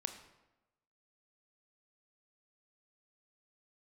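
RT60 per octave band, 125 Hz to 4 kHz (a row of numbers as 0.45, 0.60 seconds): 1.1, 1.1, 1.1, 1.0, 0.85, 0.70 seconds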